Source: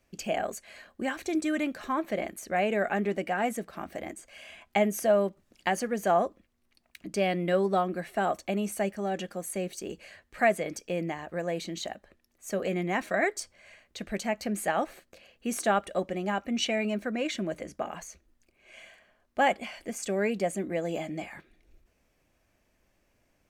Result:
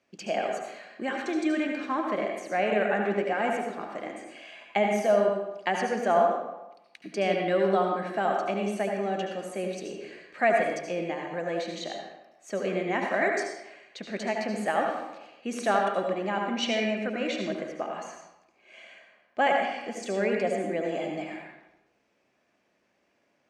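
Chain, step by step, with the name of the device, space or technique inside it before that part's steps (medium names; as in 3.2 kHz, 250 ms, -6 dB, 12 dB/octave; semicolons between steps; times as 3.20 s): supermarket ceiling speaker (band-pass 210–5300 Hz; reverberation RT60 0.90 s, pre-delay 69 ms, DRR 1 dB)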